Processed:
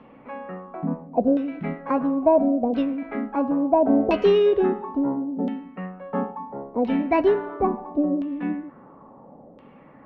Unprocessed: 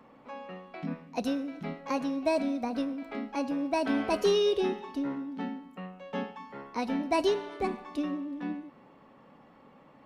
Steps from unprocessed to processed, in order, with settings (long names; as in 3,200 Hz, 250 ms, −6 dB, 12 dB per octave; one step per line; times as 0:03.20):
tilt shelving filter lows +5 dB
auto-filter low-pass saw down 0.73 Hz 530–3,100 Hz
level +4 dB